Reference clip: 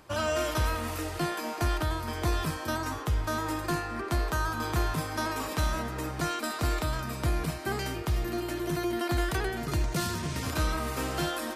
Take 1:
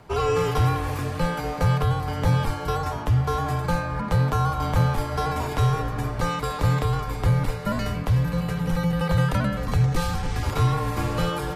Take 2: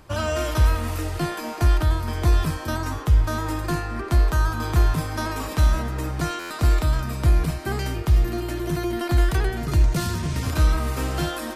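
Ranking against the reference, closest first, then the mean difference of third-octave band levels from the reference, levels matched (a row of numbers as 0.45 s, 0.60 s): 2, 1; 2.5 dB, 8.5 dB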